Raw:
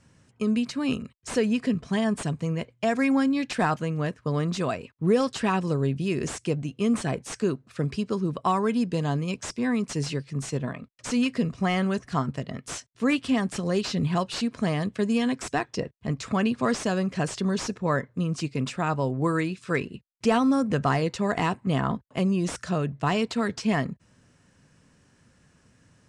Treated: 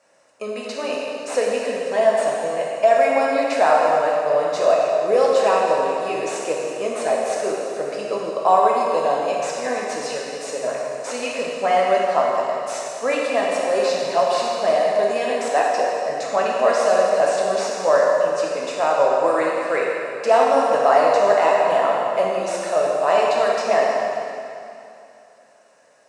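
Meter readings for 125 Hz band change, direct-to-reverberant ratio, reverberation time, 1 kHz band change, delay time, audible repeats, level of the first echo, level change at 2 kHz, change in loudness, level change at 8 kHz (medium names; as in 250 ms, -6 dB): under -15 dB, -4.0 dB, 2.7 s, +12.0 dB, no echo, no echo, no echo, +6.0 dB, +7.0 dB, +5.0 dB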